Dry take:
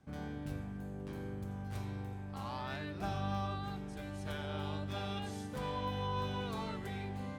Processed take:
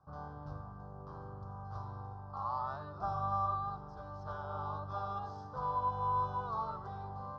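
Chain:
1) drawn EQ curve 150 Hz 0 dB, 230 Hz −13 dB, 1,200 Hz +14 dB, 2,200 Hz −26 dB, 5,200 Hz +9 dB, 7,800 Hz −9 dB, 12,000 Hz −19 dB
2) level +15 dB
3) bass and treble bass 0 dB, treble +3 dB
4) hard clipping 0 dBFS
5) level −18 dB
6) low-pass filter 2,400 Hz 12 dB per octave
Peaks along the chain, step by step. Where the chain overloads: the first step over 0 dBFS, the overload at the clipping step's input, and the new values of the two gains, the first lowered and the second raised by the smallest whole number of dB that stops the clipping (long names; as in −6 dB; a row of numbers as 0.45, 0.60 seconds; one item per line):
−21.0, −6.0, −6.0, −6.0, −24.0, −24.0 dBFS
no step passes full scale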